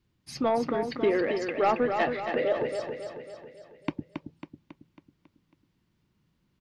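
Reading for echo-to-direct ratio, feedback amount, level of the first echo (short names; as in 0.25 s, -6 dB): -5.0 dB, 52%, -6.5 dB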